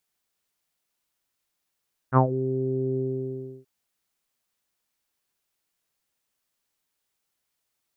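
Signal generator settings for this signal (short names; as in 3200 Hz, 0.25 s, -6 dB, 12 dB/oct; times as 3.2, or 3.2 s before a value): synth note saw C3 24 dB/oct, low-pass 390 Hz, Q 4.8, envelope 2 oct, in 0.20 s, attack 51 ms, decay 0.10 s, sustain -14 dB, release 0.68 s, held 0.85 s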